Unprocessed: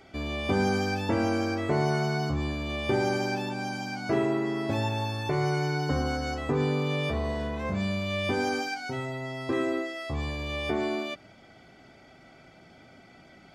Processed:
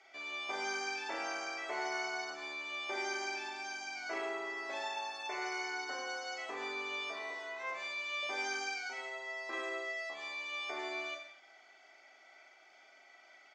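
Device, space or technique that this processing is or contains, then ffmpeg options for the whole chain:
phone speaker on a table: -filter_complex "[0:a]highpass=frequency=480:width=0.5412,highpass=frequency=480:width=1.3066,equalizer=frequency=490:width_type=q:width=4:gain=-10,equalizer=frequency=2100:width_type=q:width=4:gain=6,equalizer=frequency=6300:width_type=q:width=4:gain=6,lowpass=frequency=7600:width=0.5412,lowpass=frequency=7600:width=1.3066,asettb=1/sr,asplit=3[link_01][link_02][link_03];[link_01]atrim=end=7.304[link_04];[link_02]atrim=start=7.3:end=8.23,asetpts=PTS-STARTPTS,afade=type=in:duration=0.004:curve=qsin,afade=type=out:start_time=0.926:duration=0.004:curve=qsin,highpass=frequency=250:width=0.5412,highpass=frequency=250:width=1.3066[link_05];[link_03]atrim=start=8.226[link_06];[link_04][link_05]acrossfade=duration=0.004:curve1=hsin:curve2=qsin[link_07];[link_07][link_06]acrossfade=duration=0.004:curve1=qsin:curve2=hsin,aecho=1:1:40|84|132.4|185.6|244.2:0.631|0.398|0.251|0.158|0.1,volume=-8dB"

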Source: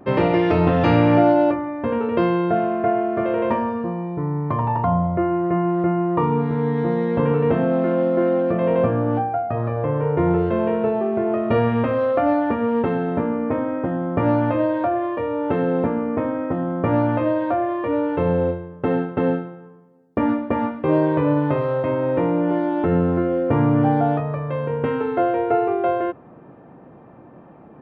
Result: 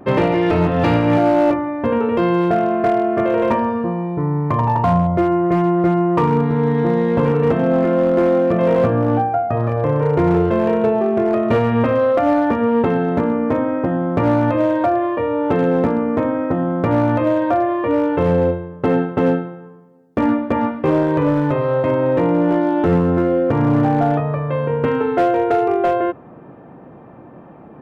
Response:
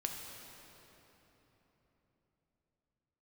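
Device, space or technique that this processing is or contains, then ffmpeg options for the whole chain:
limiter into clipper: -af "alimiter=limit=-10dB:level=0:latency=1:release=247,asoftclip=type=hard:threshold=-14dB,volume=4.5dB"

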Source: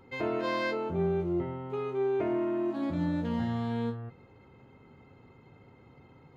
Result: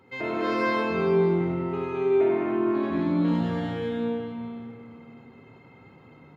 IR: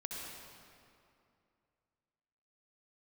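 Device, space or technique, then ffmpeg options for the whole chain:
PA in a hall: -filter_complex "[0:a]highpass=100,equalizer=frequency=2200:width_type=o:width=1.5:gain=3.5,aecho=1:1:99:0.473[link_01];[1:a]atrim=start_sample=2205[link_02];[link_01][link_02]afir=irnorm=-1:irlink=0,asettb=1/sr,asplit=3[link_03][link_04][link_05];[link_03]atrim=end=2.254[link_06];[link_04]atrim=start=2.25:end=3.28,asetpts=PTS-STARTPTS,afade=type=in:duration=0.004:curve=qsin,afade=type=out:start_time=1.026:duration=0.004:curve=qsin,lowpass=5100[link_07];[link_05]atrim=start=3.276[link_08];[link_06][link_07]acrossfade=duration=0.004:curve1=hsin:curve2=qsin[link_09];[link_09][link_08]acrossfade=duration=0.004:curve1=qsin:curve2=hsin,volume=3.5dB"

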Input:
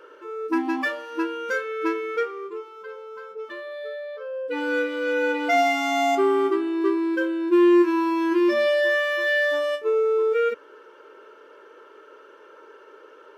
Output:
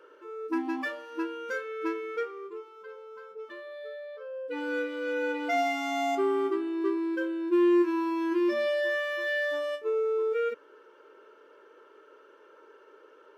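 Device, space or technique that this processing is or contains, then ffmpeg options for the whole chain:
filter by subtraction: -filter_complex "[0:a]asplit=2[link_01][link_02];[link_02]lowpass=210,volume=-1[link_03];[link_01][link_03]amix=inputs=2:normalize=0,volume=-8dB"

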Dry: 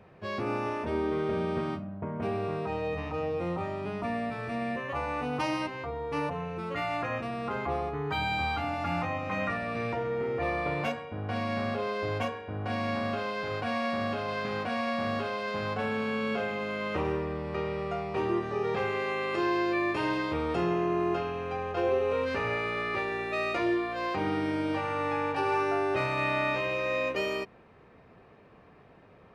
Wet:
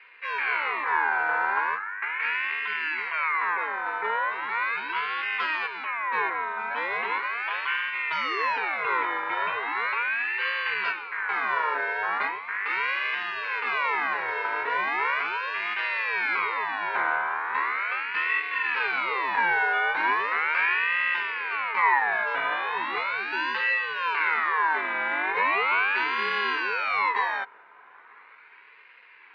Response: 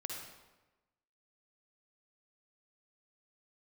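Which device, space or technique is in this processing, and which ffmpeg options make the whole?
voice changer toy: -af "aeval=exprs='val(0)*sin(2*PI*1700*n/s+1700*0.35/0.38*sin(2*PI*0.38*n/s))':channel_layout=same,highpass=410,equalizer=frequency=430:width_type=q:width=4:gain=7,equalizer=frequency=620:width_type=q:width=4:gain=-6,equalizer=frequency=1000:width_type=q:width=4:gain=10,equalizer=frequency=1500:width_type=q:width=4:gain=5,equalizer=frequency=2200:width_type=q:width=4:gain=6,equalizer=frequency=3300:width_type=q:width=4:gain=-8,lowpass=frequency=3600:width=0.5412,lowpass=frequency=3600:width=1.3066,volume=3dB"

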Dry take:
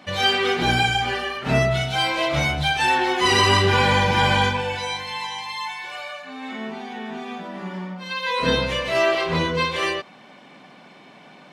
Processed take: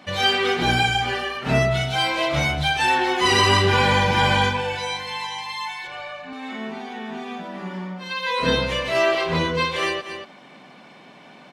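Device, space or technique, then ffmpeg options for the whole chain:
ducked delay: -filter_complex "[0:a]asplit=3[link_01][link_02][link_03];[link_02]adelay=232,volume=-8dB[link_04];[link_03]apad=whole_len=518557[link_05];[link_04][link_05]sidechaincompress=threshold=-37dB:ratio=8:attack=5.3:release=134[link_06];[link_01][link_06]amix=inputs=2:normalize=0,asettb=1/sr,asplit=3[link_07][link_08][link_09];[link_07]atrim=end=5.874[link_10];[link_08]atrim=start=5.87:end=6.33,asetpts=PTS-STARTPTS,afade=type=in:duration=0.004:curve=qsin,afade=type=out:start_time=0.456:duration=0.004:curve=qsin,aemphasis=mode=reproduction:type=bsi[link_11];[link_09]atrim=start=6.326[link_12];[link_10][link_11]acrossfade=duration=0.004:curve1=hsin:curve2=qsin[link_13];[link_13][link_12]acrossfade=duration=0.004:curve1=qsin:curve2=hsin"

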